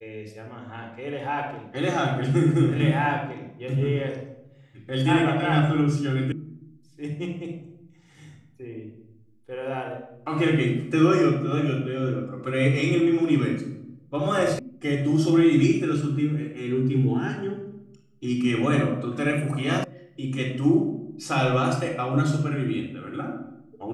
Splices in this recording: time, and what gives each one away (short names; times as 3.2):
6.32 sound cut off
14.59 sound cut off
19.84 sound cut off